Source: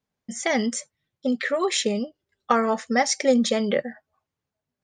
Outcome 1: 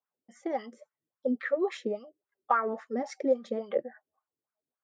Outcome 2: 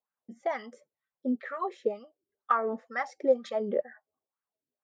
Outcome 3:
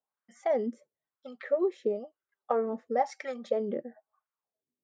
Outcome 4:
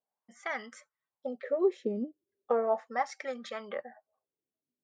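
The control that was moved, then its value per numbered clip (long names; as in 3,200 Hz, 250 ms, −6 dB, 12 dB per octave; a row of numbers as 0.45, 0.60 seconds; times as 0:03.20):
LFO wah, speed: 3.6, 2.1, 1, 0.37 Hertz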